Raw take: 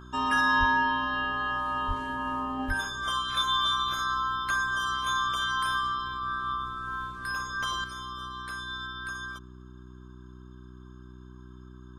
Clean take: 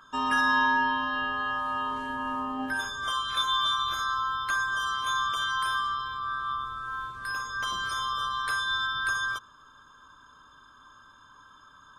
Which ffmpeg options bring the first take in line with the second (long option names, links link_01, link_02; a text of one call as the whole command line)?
ffmpeg -i in.wav -filter_complex "[0:a]bandreject=frequency=62.4:width_type=h:width=4,bandreject=frequency=124.8:width_type=h:width=4,bandreject=frequency=187.2:width_type=h:width=4,bandreject=frequency=249.6:width_type=h:width=4,bandreject=frequency=312:width_type=h:width=4,bandreject=frequency=374.4:width_type=h:width=4,asplit=3[link_01][link_02][link_03];[link_01]afade=type=out:start_time=0.59:duration=0.02[link_04];[link_02]highpass=frequency=140:width=0.5412,highpass=frequency=140:width=1.3066,afade=type=in:start_time=0.59:duration=0.02,afade=type=out:start_time=0.71:duration=0.02[link_05];[link_03]afade=type=in:start_time=0.71:duration=0.02[link_06];[link_04][link_05][link_06]amix=inputs=3:normalize=0,asplit=3[link_07][link_08][link_09];[link_07]afade=type=out:start_time=1.87:duration=0.02[link_10];[link_08]highpass=frequency=140:width=0.5412,highpass=frequency=140:width=1.3066,afade=type=in:start_time=1.87:duration=0.02,afade=type=out:start_time=1.99:duration=0.02[link_11];[link_09]afade=type=in:start_time=1.99:duration=0.02[link_12];[link_10][link_11][link_12]amix=inputs=3:normalize=0,asplit=3[link_13][link_14][link_15];[link_13]afade=type=out:start_time=2.67:duration=0.02[link_16];[link_14]highpass=frequency=140:width=0.5412,highpass=frequency=140:width=1.3066,afade=type=in:start_time=2.67:duration=0.02,afade=type=out:start_time=2.79:duration=0.02[link_17];[link_15]afade=type=in:start_time=2.79:duration=0.02[link_18];[link_16][link_17][link_18]amix=inputs=3:normalize=0,asetnsamples=nb_out_samples=441:pad=0,asendcmd='7.84 volume volume 8.5dB',volume=0dB" out.wav